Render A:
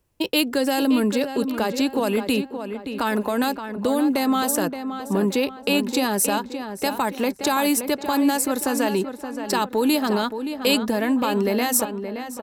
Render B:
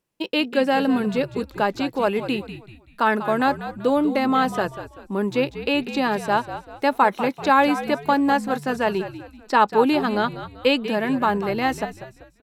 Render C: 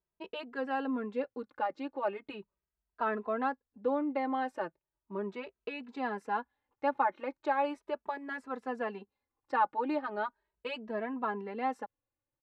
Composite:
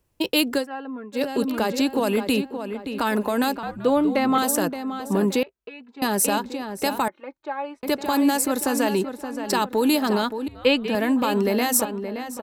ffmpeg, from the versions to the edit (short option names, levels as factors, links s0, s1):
-filter_complex "[2:a]asplit=3[s0][s1][s2];[1:a]asplit=2[s3][s4];[0:a]asplit=6[s5][s6][s7][s8][s9][s10];[s5]atrim=end=0.67[s11];[s0]atrim=start=0.57:end=1.22[s12];[s6]atrim=start=1.12:end=3.632[s13];[s3]atrim=start=3.628:end=4.382[s14];[s7]atrim=start=4.378:end=5.432[s15];[s1]atrim=start=5.428:end=6.022[s16];[s8]atrim=start=6.018:end=7.082[s17];[s2]atrim=start=7.078:end=7.832[s18];[s9]atrim=start=7.828:end=10.482[s19];[s4]atrim=start=10.478:end=10.952[s20];[s10]atrim=start=10.948[s21];[s11][s12]acrossfade=d=0.1:c1=tri:c2=tri[s22];[s22][s13]acrossfade=d=0.1:c1=tri:c2=tri[s23];[s23][s14]acrossfade=d=0.004:c1=hsin:c2=hsin[s24];[s24][s15]acrossfade=d=0.004:c1=hsin:c2=hsin[s25];[s25][s16]acrossfade=d=0.004:c1=hsin:c2=hsin[s26];[s26][s17]acrossfade=d=0.004:c1=hsin:c2=hsin[s27];[s27][s18]acrossfade=d=0.004:c1=hsin:c2=hsin[s28];[s28][s19]acrossfade=d=0.004:c1=hsin:c2=hsin[s29];[s29][s20]acrossfade=d=0.004:c1=hsin:c2=hsin[s30];[s30][s21]acrossfade=d=0.004:c1=hsin:c2=hsin"